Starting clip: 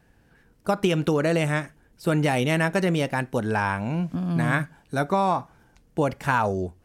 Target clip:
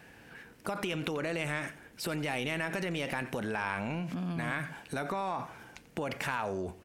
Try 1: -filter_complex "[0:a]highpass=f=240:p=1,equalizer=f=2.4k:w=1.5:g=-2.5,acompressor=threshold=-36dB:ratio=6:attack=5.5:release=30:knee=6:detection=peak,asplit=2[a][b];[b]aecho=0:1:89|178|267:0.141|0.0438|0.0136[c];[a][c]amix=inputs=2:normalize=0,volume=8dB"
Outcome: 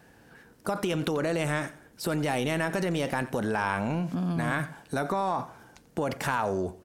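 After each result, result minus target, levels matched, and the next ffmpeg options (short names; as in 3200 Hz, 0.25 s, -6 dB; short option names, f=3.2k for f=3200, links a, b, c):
compressor: peak gain reduction -7 dB; 2000 Hz band -3.0 dB
-filter_complex "[0:a]highpass=f=240:p=1,equalizer=f=2.4k:w=1.5:g=-2.5,acompressor=threshold=-43.5dB:ratio=6:attack=5.5:release=30:knee=6:detection=peak,asplit=2[a][b];[b]aecho=0:1:89|178|267:0.141|0.0438|0.0136[c];[a][c]amix=inputs=2:normalize=0,volume=8dB"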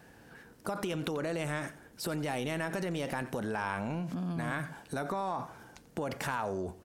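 2000 Hz band -2.5 dB
-filter_complex "[0:a]highpass=f=240:p=1,equalizer=f=2.4k:w=1.5:g=6.5,acompressor=threshold=-43.5dB:ratio=6:attack=5.5:release=30:knee=6:detection=peak,asplit=2[a][b];[b]aecho=0:1:89|178|267:0.141|0.0438|0.0136[c];[a][c]amix=inputs=2:normalize=0,volume=8dB"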